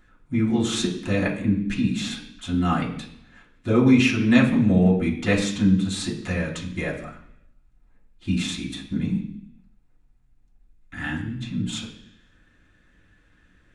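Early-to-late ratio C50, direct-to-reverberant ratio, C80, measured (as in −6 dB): 8.0 dB, −5.5 dB, 11.5 dB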